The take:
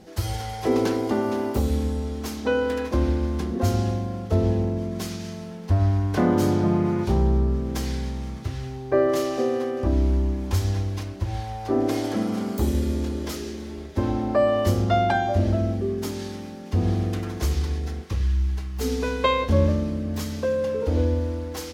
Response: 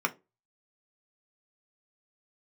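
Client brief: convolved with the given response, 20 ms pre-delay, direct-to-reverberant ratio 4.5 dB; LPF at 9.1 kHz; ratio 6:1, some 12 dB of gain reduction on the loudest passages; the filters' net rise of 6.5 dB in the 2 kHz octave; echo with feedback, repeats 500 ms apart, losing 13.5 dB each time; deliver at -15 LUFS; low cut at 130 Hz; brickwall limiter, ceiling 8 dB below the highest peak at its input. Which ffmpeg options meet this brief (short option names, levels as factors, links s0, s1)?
-filter_complex "[0:a]highpass=130,lowpass=9100,equalizer=f=2000:t=o:g=8.5,acompressor=threshold=0.0398:ratio=6,alimiter=limit=0.0631:level=0:latency=1,aecho=1:1:500|1000:0.211|0.0444,asplit=2[s0][s1];[1:a]atrim=start_sample=2205,adelay=20[s2];[s1][s2]afir=irnorm=-1:irlink=0,volume=0.2[s3];[s0][s3]amix=inputs=2:normalize=0,volume=7.5"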